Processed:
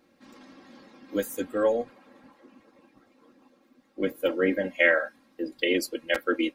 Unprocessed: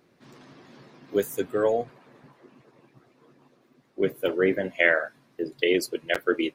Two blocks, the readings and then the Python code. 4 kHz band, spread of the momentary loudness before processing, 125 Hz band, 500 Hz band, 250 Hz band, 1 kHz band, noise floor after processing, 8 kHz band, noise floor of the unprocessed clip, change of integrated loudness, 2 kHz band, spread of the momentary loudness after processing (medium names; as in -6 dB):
0.0 dB, 11 LU, -4.5 dB, -2.0 dB, 0.0 dB, -1.5 dB, -64 dBFS, no reading, -64 dBFS, -1.0 dB, -0.5 dB, 13 LU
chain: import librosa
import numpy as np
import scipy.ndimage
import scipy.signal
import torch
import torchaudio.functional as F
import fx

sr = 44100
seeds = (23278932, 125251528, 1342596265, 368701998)

y = x + 0.87 * np.pad(x, (int(3.7 * sr / 1000.0), 0))[:len(x)]
y = y * librosa.db_to_amplitude(-3.0)